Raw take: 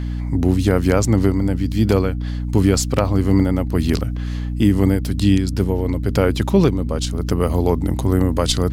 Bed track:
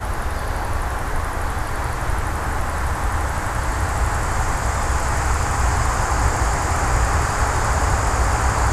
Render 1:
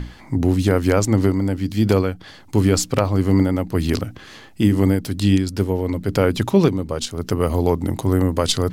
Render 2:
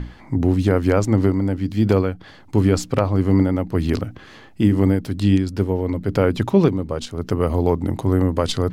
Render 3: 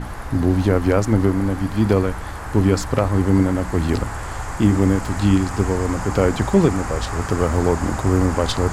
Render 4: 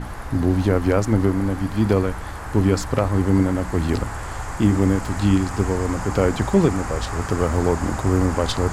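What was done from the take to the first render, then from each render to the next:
notches 60/120/180/240/300 Hz
high shelf 3700 Hz -10.5 dB
add bed track -7.5 dB
gain -1.5 dB

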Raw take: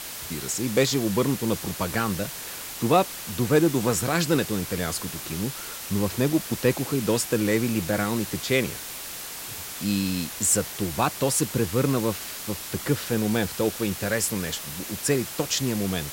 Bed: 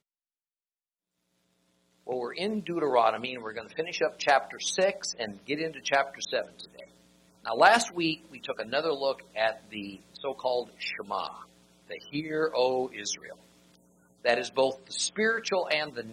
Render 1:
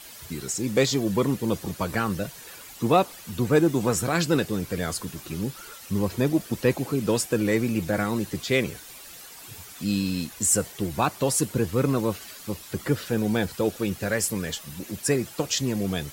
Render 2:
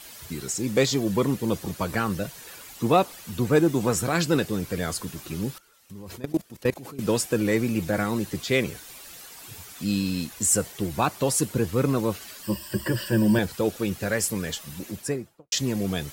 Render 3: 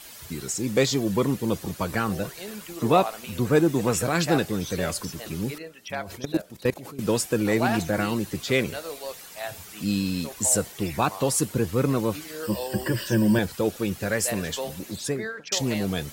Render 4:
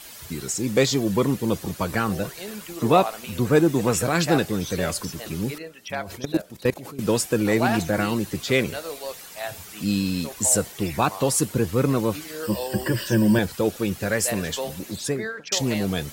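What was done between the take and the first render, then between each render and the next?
denoiser 11 dB, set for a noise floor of -37 dBFS
5.58–6.99 level quantiser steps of 20 dB; 12.43–13.39 ripple EQ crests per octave 1.3, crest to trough 15 dB; 14.8–15.52 studio fade out
add bed -7.5 dB
gain +2 dB

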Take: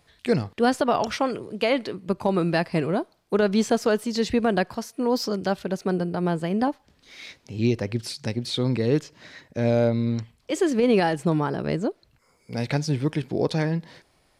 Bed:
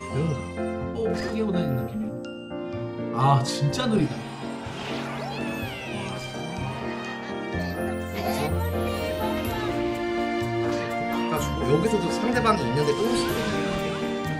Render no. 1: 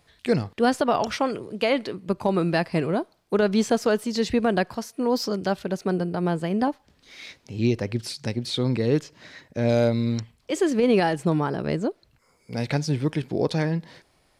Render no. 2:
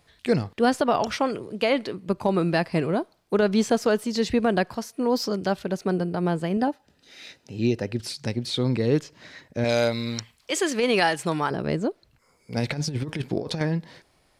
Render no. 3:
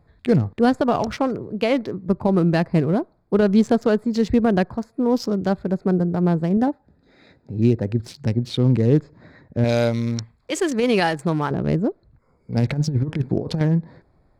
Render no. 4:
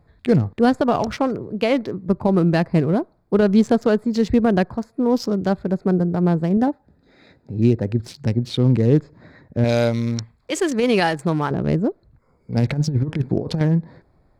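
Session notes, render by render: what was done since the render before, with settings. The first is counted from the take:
9.69–10.2 high shelf 3000 Hz +9 dB
6.57–8 notch comb 1100 Hz; 9.64–11.51 tilt shelf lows -7.5 dB, about 660 Hz; 12.56–13.61 negative-ratio compressor -26 dBFS, ratio -0.5
Wiener smoothing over 15 samples; low shelf 270 Hz +10.5 dB
gain +1 dB

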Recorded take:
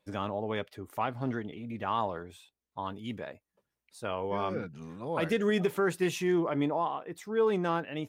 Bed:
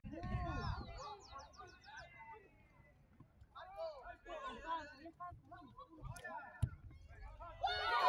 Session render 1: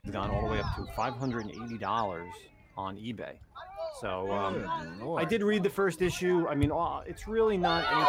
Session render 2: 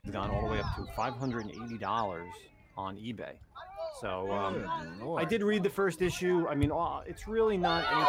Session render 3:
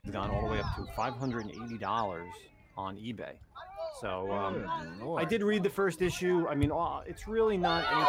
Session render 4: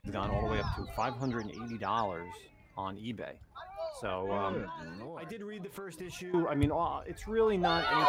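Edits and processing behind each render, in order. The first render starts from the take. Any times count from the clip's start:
add bed +9 dB
gain -1.5 dB
4.18–4.68 air absorption 140 m
4.64–6.34 compressor 10:1, threshold -39 dBFS

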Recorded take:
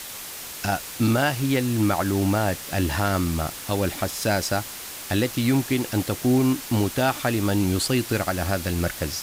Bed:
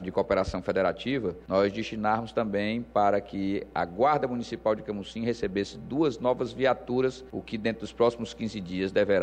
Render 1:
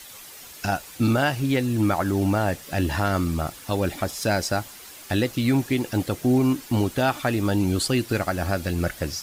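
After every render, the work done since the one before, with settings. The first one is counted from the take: denoiser 9 dB, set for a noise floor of -37 dBFS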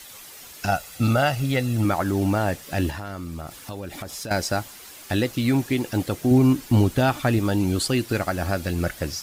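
0.68–1.85 comb 1.5 ms, depth 51%; 2.9–4.31 compressor, threshold -30 dBFS; 6.31–7.39 low shelf 190 Hz +8.5 dB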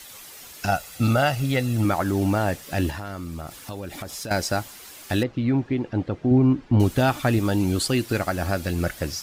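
5.23–6.8 tape spacing loss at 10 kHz 35 dB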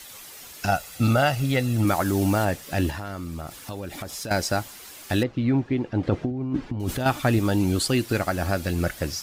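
1.87–2.45 high shelf 4500 Hz +7 dB; 6.03–7.06 negative-ratio compressor -26 dBFS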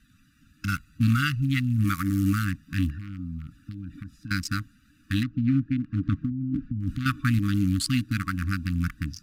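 Wiener smoothing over 41 samples; FFT band-reject 310–1100 Hz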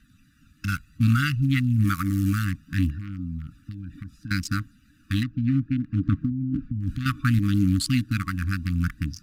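phaser 0.65 Hz, delay 1.3 ms, feedback 29%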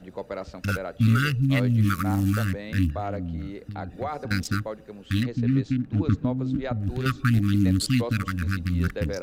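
add bed -8.5 dB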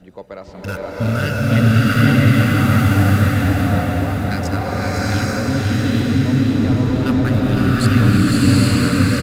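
feedback echo 0.509 s, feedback 58%, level -5 dB; bloom reverb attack 0.82 s, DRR -8 dB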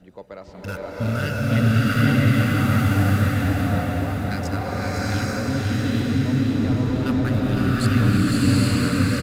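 gain -5 dB

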